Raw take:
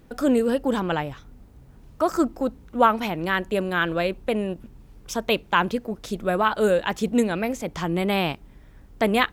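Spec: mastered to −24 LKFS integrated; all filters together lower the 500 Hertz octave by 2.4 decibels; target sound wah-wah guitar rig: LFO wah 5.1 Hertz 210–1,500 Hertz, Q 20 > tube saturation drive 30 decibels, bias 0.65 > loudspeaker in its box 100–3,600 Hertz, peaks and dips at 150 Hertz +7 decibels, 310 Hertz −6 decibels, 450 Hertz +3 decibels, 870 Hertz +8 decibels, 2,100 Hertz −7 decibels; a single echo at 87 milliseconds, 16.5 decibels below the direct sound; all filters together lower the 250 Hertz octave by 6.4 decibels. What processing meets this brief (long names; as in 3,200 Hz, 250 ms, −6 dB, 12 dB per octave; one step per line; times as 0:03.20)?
parametric band 250 Hz −7 dB
parametric band 500 Hz −3 dB
single-tap delay 87 ms −16.5 dB
LFO wah 5.1 Hz 210–1,500 Hz, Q 20
tube saturation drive 30 dB, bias 0.65
loudspeaker in its box 100–3,600 Hz, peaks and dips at 150 Hz +7 dB, 310 Hz −6 dB, 450 Hz +3 dB, 870 Hz +8 dB, 2,100 Hz −7 dB
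level +20.5 dB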